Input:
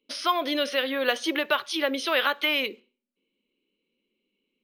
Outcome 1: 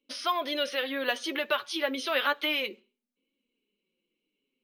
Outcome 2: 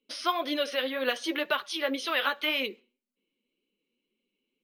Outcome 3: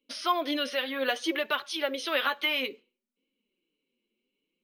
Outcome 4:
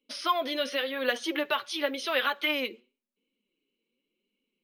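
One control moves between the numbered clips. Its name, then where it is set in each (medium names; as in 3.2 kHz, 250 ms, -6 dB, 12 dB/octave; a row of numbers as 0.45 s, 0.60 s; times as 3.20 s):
flange, rate: 0.3 Hz, 1.9 Hz, 0.61 Hz, 0.91 Hz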